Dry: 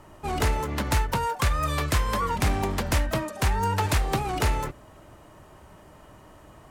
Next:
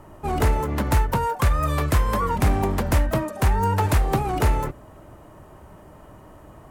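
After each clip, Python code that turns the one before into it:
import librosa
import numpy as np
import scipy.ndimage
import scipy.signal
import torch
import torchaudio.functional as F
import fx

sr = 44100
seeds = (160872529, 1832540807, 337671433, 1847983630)

y = fx.peak_eq(x, sr, hz=4400.0, db=-9.0, octaves=2.7)
y = y * 10.0 ** (5.0 / 20.0)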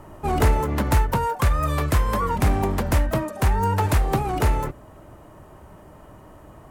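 y = fx.rider(x, sr, range_db=4, speed_s=2.0)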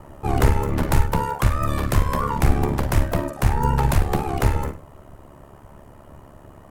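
y = fx.octave_divider(x, sr, octaves=2, level_db=-1.0)
y = fx.room_flutter(y, sr, wall_m=8.7, rt60_s=0.33)
y = y * np.sin(2.0 * np.pi * 35.0 * np.arange(len(y)) / sr)
y = y * 10.0 ** (2.0 / 20.0)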